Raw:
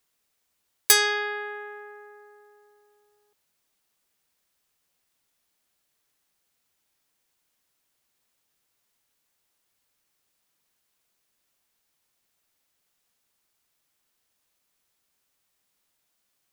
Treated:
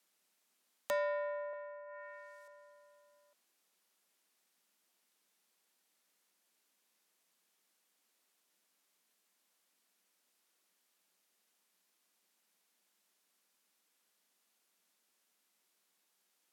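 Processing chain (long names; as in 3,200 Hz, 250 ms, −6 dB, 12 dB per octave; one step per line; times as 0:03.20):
frequency shifter +170 Hz
treble cut that deepens with the level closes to 680 Hz, closed at −38.5 dBFS
0:01.53–0:02.48: RIAA equalisation recording
level −1.5 dB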